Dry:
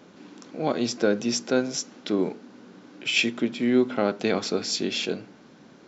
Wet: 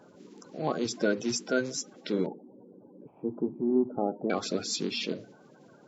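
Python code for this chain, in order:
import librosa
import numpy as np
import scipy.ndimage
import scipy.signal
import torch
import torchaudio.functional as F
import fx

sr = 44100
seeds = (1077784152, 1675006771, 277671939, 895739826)

y = fx.spec_quant(x, sr, step_db=30)
y = fx.ellip_lowpass(y, sr, hz=910.0, order=4, stop_db=80, at=(2.26, 4.3))
y = F.gain(torch.from_numpy(y), -4.0).numpy()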